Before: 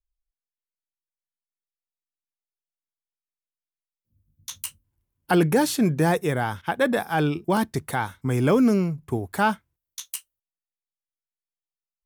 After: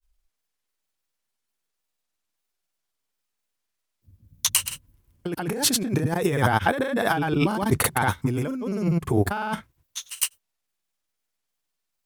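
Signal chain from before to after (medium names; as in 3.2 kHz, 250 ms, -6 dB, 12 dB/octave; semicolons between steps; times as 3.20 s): granulator 100 ms, grains 20 per s, spray 100 ms, pitch spread up and down by 0 st; compressor with a negative ratio -31 dBFS, ratio -1; trim +7 dB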